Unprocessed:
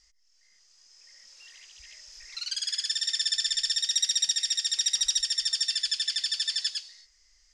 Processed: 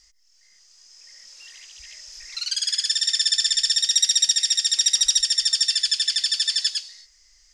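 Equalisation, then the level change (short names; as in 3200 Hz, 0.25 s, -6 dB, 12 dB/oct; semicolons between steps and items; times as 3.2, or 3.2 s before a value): high shelf 5900 Hz +5.5 dB; +4.5 dB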